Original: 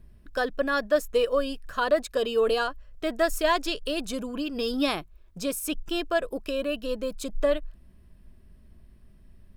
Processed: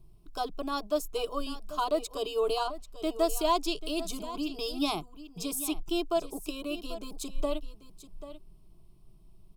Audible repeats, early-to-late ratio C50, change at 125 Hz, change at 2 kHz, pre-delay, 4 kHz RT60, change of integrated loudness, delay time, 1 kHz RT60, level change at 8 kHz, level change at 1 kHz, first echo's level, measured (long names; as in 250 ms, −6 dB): 1, no reverb audible, −2.0 dB, −13.0 dB, no reverb audible, no reverb audible, −5.0 dB, 789 ms, no reverb audible, 0.0 dB, −2.0 dB, −14.0 dB